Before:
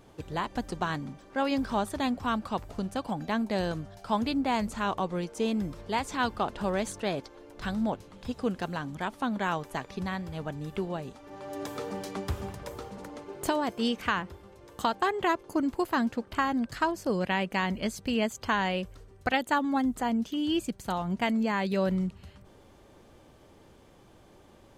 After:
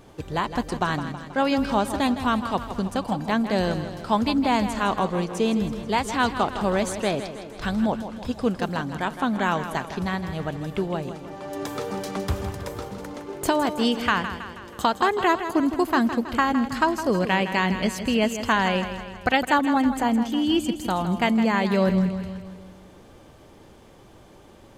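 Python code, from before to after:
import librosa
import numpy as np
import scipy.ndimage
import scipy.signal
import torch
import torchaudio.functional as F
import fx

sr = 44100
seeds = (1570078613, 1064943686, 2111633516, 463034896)

y = fx.echo_feedback(x, sr, ms=161, feedback_pct=55, wet_db=-10.5)
y = F.gain(torch.from_numpy(y), 6.0).numpy()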